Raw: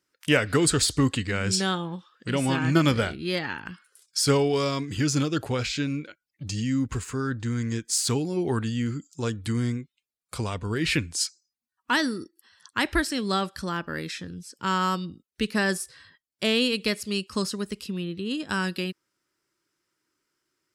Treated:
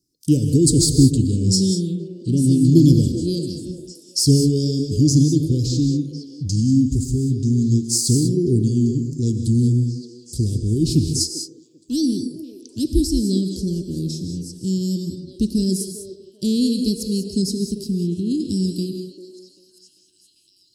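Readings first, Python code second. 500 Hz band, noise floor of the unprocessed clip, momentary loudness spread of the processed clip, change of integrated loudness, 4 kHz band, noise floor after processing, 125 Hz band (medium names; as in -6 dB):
+2.0 dB, under -85 dBFS, 14 LU, +7.0 dB, +1.5 dB, -57 dBFS, +11.5 dB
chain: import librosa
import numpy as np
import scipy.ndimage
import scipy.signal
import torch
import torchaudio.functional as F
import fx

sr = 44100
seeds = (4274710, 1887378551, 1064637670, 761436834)

p1 = scipy.signal.sosfilt(scipy.signal.ellip(3, 1.0, 50, [340.0, 4900.0], 'bandstop', fs=sr, output='sos'), x)
p2 = fx.low_shelf(p1, sr, hz=240.0, db=7.0)
p3 = p2 + fx.echo_stepped(p2, sr, ms=394, hz=520.0, octaves=0.7, feedback_pct=70, wet_db=-6, dry=0)
p4 = fx.rev_gated(p3, sr, seeds[0], gate_ms=220, shape='rising', drr_db=6.0)
y = p4 * 10.0 ** (6.0 / 20.0)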